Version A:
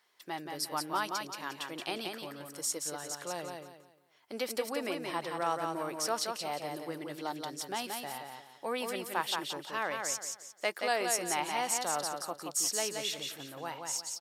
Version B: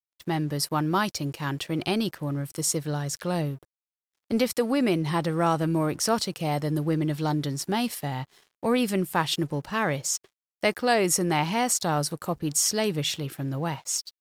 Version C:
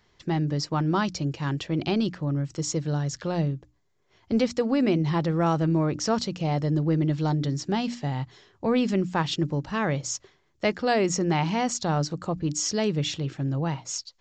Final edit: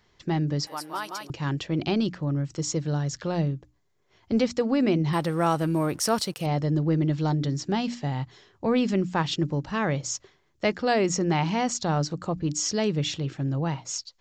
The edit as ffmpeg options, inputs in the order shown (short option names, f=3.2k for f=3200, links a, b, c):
-filter_complex "[2:a]asplit=3[a][b][c];[a]atrim=end=0.672[d];[0:a]atrim=start=0.668:end=1.302[e];[b]atrim=start=1.298:end=5.132[f];[1:a]atrim=start=5.128:end=6.462[g];[c]atrim=start=6.458[h];[d][e]acrossfade=d=0.004:c1=hsin:c2=hsin[i];[i][f]acrossfade=d=0.004:c1=hsin:c2=hsin[j];[j][g]acrossfade=d=0.004:c1=hsin:c2=hsin[k];[k][h]acrossfade=d=0.004:c1=hsin:c2=hsin"